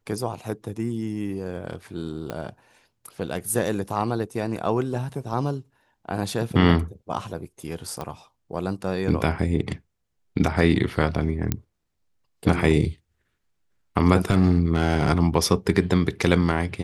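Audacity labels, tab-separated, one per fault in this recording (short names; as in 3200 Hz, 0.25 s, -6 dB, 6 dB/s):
2.300000	2.300000	pop -16 dBFS
5.330000	5.330000	gap 3.4 ms
8.010000	8.010000	pop -18 dBFS
11.520000	11.520000	pop -8 dBFS
14.300000	15.110000	clipped -11.5 dBFS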